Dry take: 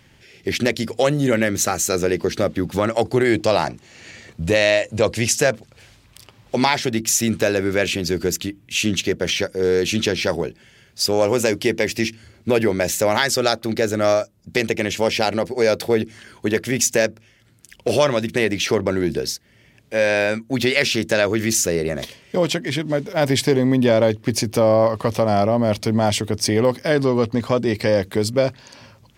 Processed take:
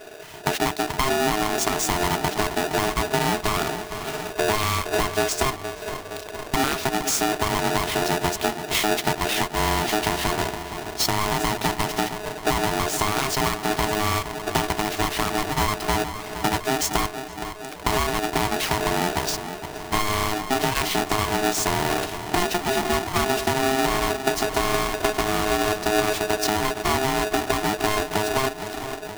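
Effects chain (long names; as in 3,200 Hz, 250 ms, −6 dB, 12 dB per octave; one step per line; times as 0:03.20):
each half-wave held at its own peak
high-pass filter 61 Hz
low-shelf EQ 200 Hz +11.5 dB
downward compressor 6 to 1, threshold −21 dBFS, peak gain reduction 16 dB
feedback echo with a low-pass in the loop 467 ms, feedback 70%, low-pass 1,200 Hz, level −10 dB
ring modulator with a square carrier 530 Hz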